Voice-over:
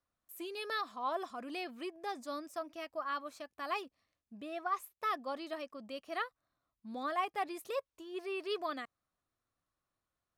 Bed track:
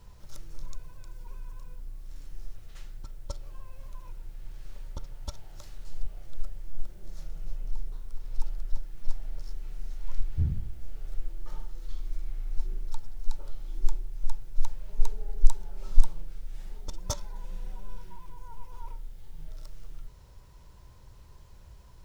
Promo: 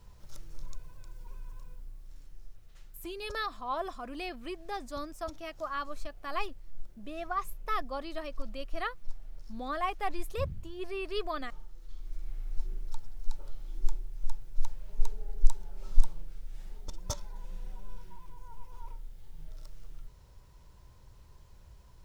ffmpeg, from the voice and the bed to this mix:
ffmpeg -i stem1.wav -i stem2.wav -filter_complex "[0:a]adelay=2650,volume=2dB[link_01];[1:a]volume=3dB,afade=type=out:start_time=1.59:duration=0.81:silence=0.473151,afade=type=in:start_time=11.9:duration=0.41:silence=0.501187[link_02];[link_01][link_02]amix=inputs=2:normalize=0" out.wav

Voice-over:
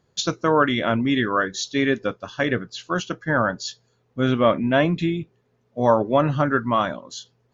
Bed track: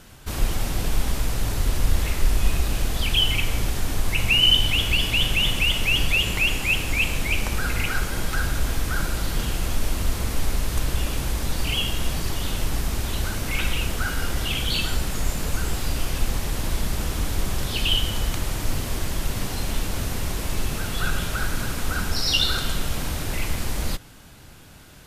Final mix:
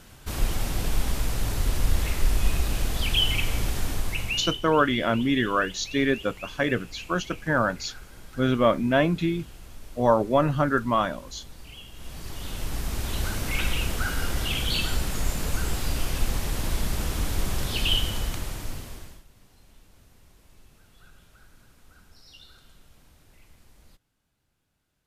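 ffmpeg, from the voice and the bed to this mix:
ffmpeg -i stem1.wav -i stem2.wav -filter_complex "[0:a]adelay=4200,volume=-2.5dB[link_01];[1:a]volume=15.5dB,afade=type=out:start_time=3.84:duration=0.77:silence=0.133352,afade=type=in:start_time=11.92:duration=1.35:silence=0.125893,afade=type=out:start_time=17.94:duration=1.3:silence=0.0421697[link_02];[link_01][link_02]amix=inputs=2:normalize=0" out.wav

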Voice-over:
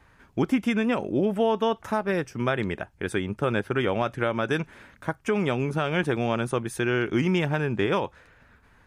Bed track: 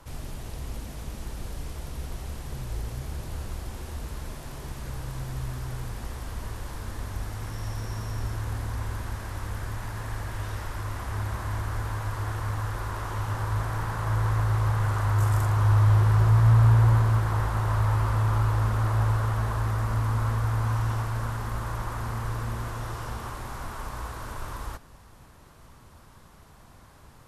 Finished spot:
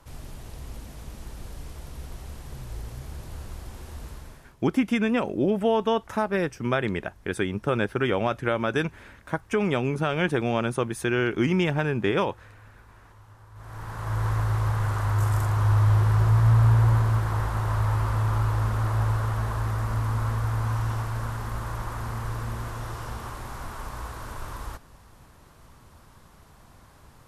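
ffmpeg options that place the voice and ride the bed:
ffmpeg -i stem1.wav -i stem2.wav -filter_complex "[0:a]adelay=4250,volume=0.5dB[link_01];[1:a]volume=17.5dB,afade=type=out:start_time=4.08:duration=0.47:silence=0.125893,afade=type=in:start_time=13.54:duration=0.73:silence=0.0891251[link_02];[link_01][link_02]amix=inputs=2:normalize=0" out.wav

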